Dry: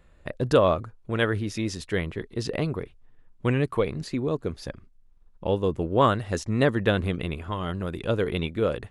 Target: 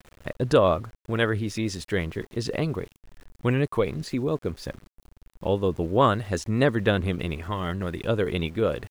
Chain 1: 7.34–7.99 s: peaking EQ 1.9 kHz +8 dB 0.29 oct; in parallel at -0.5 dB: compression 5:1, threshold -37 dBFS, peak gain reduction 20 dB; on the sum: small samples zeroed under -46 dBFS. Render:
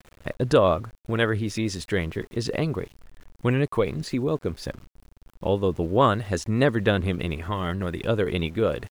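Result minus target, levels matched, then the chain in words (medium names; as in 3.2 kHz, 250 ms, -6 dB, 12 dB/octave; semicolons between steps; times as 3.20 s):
compression: peak gain reduction -9 dB
7.34–7.99 s: peaking EQ 1.9 kHz +8 dB 0.29 oct; in parallel at -0.5 dB: compression 5:1, threshold -48 dBFS, peak gain reduction 29 dB; on the sum: small samples zeroed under -46 dBFS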